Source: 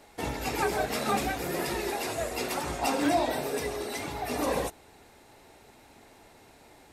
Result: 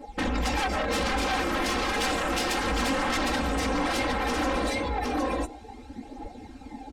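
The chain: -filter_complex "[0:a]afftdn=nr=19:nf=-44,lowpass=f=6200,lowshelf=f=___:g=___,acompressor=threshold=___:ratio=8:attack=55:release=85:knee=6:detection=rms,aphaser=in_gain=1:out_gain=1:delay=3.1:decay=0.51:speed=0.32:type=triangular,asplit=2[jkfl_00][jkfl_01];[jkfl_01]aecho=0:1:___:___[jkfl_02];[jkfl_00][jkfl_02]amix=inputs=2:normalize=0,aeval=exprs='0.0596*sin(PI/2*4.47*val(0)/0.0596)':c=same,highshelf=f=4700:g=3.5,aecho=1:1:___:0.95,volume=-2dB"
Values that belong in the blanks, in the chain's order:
390, 6.5, -41dB, 759, 0.668, 3.8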